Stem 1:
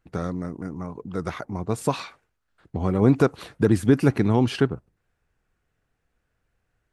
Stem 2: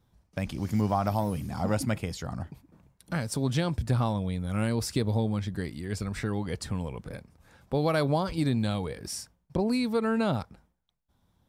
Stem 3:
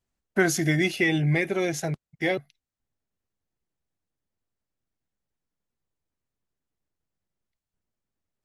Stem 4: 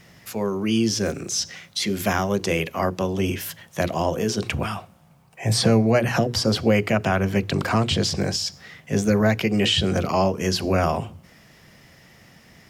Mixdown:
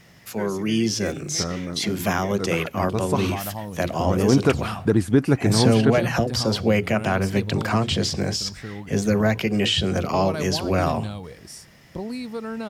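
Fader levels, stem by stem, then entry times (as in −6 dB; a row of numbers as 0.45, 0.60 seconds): 0.0, −4.5, −14.0, −1.0 decibels; 1.25, 2.40, 0.00, 0.00 seconds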